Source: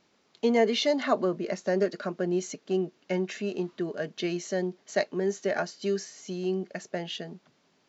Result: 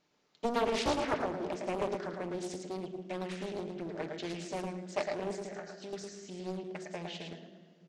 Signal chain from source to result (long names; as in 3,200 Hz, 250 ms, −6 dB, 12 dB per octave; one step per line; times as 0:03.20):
0:05.35–0:05.93: downward compressor 12 to 1, threshold −34 dBFS, peak gain reduction 11.5 dB
repeating echo 109 ms, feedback 22%, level −4.5 dB
on a send at −6 dB: convolution reverb RT60 2.0 s, pre-delay 7 ms
on the sum: highs frequency-modulated by the lows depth 0.74 ms
level −8.5 dB